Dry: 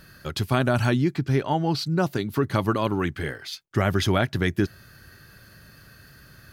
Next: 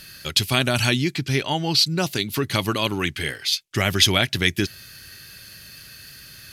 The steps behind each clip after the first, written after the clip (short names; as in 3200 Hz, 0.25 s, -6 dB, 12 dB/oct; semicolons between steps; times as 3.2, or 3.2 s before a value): band shelf 5300 Hz +14.5 dB 3 oct; gain -1 dB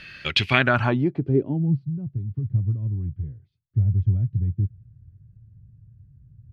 low-pass sweep 2500 Hz -> 110 Hz, 0.47–1.93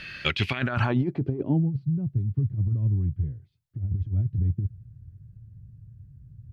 negative-ratio compressor -23 dBFS, ratio -0.5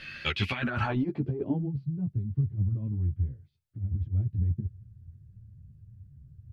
ensemble effect